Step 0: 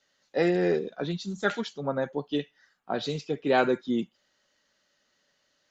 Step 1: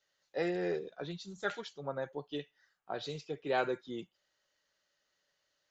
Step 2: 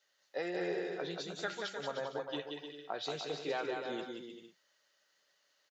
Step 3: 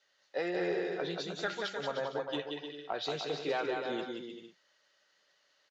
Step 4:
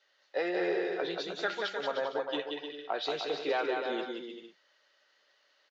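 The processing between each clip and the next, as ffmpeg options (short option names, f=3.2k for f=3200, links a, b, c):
-af "equalizer=f=230:w=2.6:g=-11,volume=-8dB"
-filter_complex "[0:a]highpass=f=430:p=1,acompressor=threshold=-38dB:ratio=5,asplit=2[a][b];[b]aecho=0:1:180|306|394.2|455.9|499.2:0.631|0.398|0.251|0.158|0.1[c];[a][c]amix=inputs=2:normalize=0,volume=3.5dB"
-af "lowpass=5.8k,asoftclip=type=tanh:threshold=-25dB,volume=4dB"
-filter_complex "[0:a]acrossover=split=230 6000:gain=0.0891 1 0.112[a][b][c];[a][b][c]amix=inputs=3:normalize=0,volume=3dB"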